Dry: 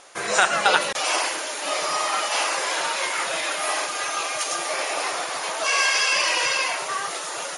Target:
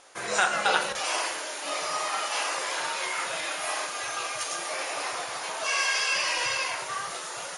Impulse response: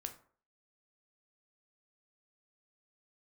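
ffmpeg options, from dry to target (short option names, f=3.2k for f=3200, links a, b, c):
-filter_complex "[0:a]asubboost=boost=3.5:cutoff=140[a];[1:a]atrim=start_sample=2205[b];[a][b]afir=irnorm=-1:irlink=0,volume=-2.5dB"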